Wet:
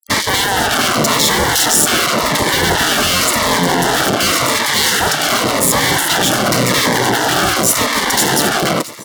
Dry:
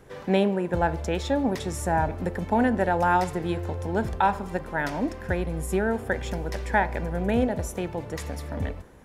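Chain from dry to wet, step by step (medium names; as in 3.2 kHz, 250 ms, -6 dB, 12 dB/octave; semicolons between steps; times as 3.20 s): fuzz box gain 43 dB, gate -42 dBFS; feedback delay 669 ms, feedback 45%, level -22 dB; spectral gate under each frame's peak -15 dB weak; high-pass 55 Hz; bass shelf 180 Hz +4 dB; sine folder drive 8 dB, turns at -5.5 dBFS; bass shelf 77 Hz -9 dB; band-stop 2.5 kHz, Q 5.8; peak limiter -7 dBFS, peak gain reduction 4.5 dB; Shepard-style phaser falling 0.9 Hz; trim +3 dB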